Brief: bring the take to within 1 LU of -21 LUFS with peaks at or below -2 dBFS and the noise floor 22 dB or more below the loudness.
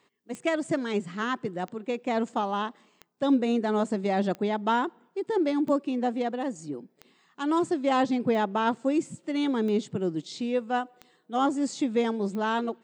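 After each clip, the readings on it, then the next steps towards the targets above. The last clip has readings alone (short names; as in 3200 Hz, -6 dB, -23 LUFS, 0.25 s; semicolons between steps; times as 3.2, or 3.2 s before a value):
clicks 10; loudness -28.0 LUFS; peak -15.0 dBFS; loudness target -21.0 LUFS
-> de-click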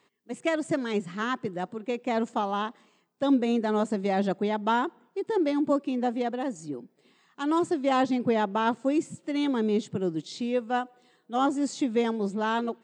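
clicks 0; loudness -28.0 LUFS; peak -15.0 dBFS; loudness target -21.0 LUFS
-> gain +7 dB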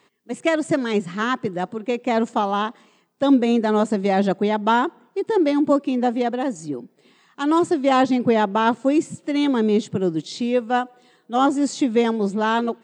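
loudness -21.0 LUFS; peak -8.0 dBFS; noise floor -60 dBFS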